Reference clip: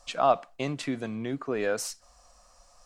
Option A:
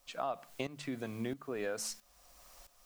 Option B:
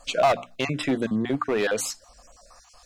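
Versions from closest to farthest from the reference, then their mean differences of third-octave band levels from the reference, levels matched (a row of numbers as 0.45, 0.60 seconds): B, A; 4.0, 6.0 decibels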